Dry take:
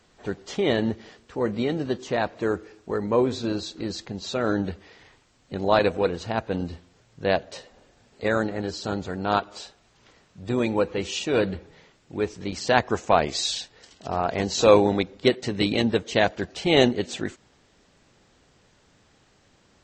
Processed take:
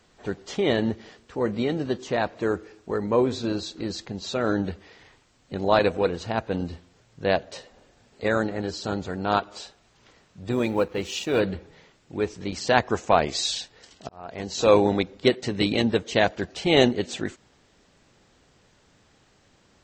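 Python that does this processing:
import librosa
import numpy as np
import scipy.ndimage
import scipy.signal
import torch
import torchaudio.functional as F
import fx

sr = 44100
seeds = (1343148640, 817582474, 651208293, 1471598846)

y = fx.law_mismatch(x, sr, coded='A', at=(10.52, 11.4))
y = fx.edit(y, sr, fx.fade_in_span(start_s=14.09, length_s=0.77), tone=tone)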